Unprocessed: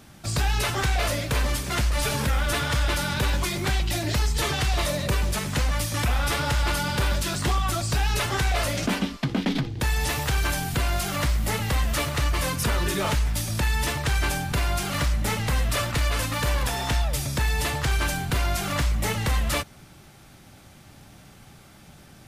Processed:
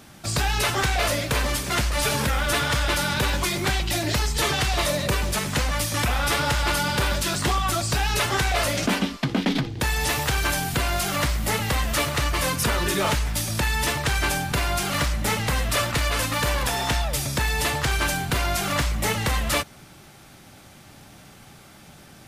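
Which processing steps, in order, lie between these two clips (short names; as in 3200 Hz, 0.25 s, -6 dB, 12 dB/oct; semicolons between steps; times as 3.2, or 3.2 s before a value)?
low shelf 140 Hz -6.5 dB; gain +3.5 dB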